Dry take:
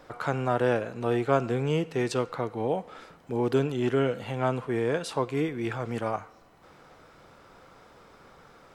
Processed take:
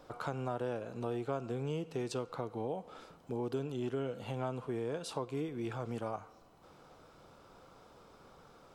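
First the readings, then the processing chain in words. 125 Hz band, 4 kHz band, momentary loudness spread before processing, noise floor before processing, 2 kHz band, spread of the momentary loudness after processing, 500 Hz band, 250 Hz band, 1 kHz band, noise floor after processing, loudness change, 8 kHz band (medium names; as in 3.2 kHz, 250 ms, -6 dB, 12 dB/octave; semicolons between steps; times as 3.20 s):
-9.5 dB, -9.5 dB, 7 LU, -56 dBFS, -14.5 dB, 21 LU, -10.5 dB, -10.0 dB, -10.5 dB, -61 dBFS, -10.5 dB, -7.5 dB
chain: peaking EQ 1.9 kHz -8.5 dB 0.67 oct; compression 3:1, threshold -31 dBFS, peak gain reduction 10 dB; trim -4 dB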